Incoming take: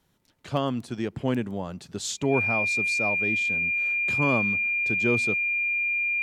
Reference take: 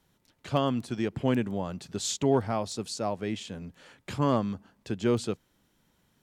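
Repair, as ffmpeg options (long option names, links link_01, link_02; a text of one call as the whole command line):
ffmpeg -i in.wav -af "bandreject=frequency=2400:width=30" out.wav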